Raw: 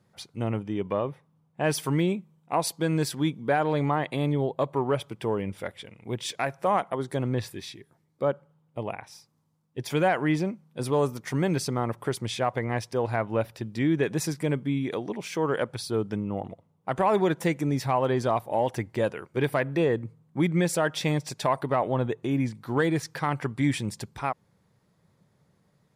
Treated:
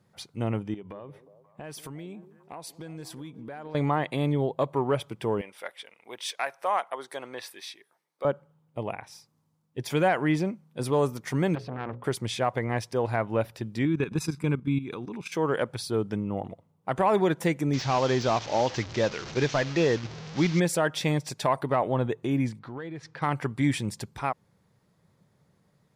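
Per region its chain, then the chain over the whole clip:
0.74–3.75 notches 50/100 Hz + compressor 5:1, threshold -39 dBFS + delay with a stepping band-pass 0.178 s, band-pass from 340 Hz, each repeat 0.7 oct, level -10.5 dB
5.41–8.25 HPF 680 Hz + notch 7200 Hz, Q 9.3
11.55–12.04 air absorption 360 m + notches 60/120/180/240/300/360/420/480/540 Hz + core saturation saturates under 1100 Hz
13.85–15.32 high shelf 11000 Hz -10.5 dB + comb 0.8 ms, depth 67% + level quantiser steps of 12 dB
17.73–20.6 delta modulation 32 kbps, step -35 dBFS + high shelf 2900 Hz +9.5 dB + de-esser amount 80%
22.59–23.22 LPF 3800 Hz + compressor 3:1, threshold -39 dBFS
whole clip: dry

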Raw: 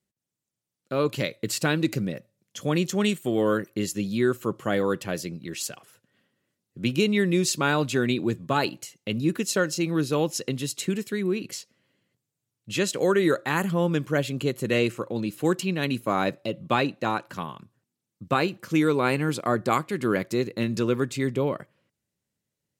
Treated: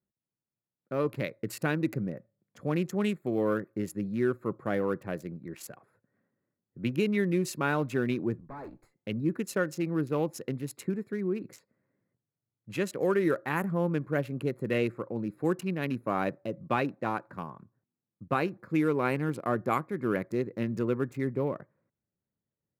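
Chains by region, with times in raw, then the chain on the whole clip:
8.4–8.97 tube stage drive 34 dB, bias 0.65 + three-band expander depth 40%
whole clip: Wiener smoothing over 15 samples; band shelf 5100 Hz -8.5 dB; gain -4.5 dB

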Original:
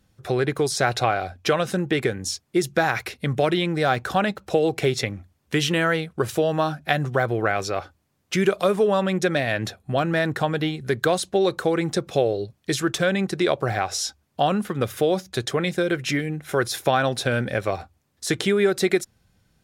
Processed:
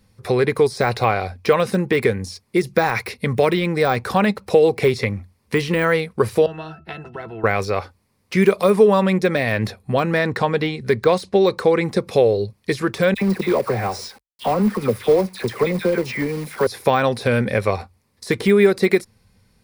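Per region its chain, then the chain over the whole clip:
6.46–7.44 octave resonator E, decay 0.15 s + spectral compressor 2:1
10.17–11.85 LPF 7500 Hz + de-esser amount 60%
13.14–16.67 HPF 120 Hz + dispersion lows, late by 74 ms, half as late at 1500 Hz + companded quantiser 4-bit
whole clip: de-esser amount 80%; ripple EQ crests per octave 0.9, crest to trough 7 dB; gain +4.5 dB

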